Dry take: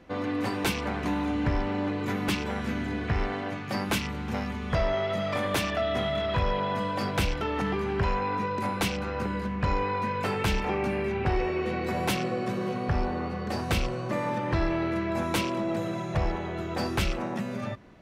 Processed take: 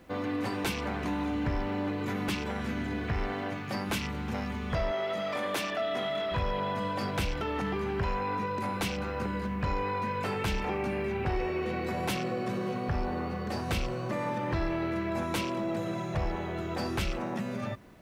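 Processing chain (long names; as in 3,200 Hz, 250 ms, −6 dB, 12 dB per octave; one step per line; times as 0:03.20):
0:04.91–0:06.32: high-pass filter 240 Hz 12 dB per octave
in parallel at +2.5 dB: brickwall limiter −24.5 dBFS, peak gain reduction 8 dB
on the sum: bit reduction 10 bits
level −8.5 dB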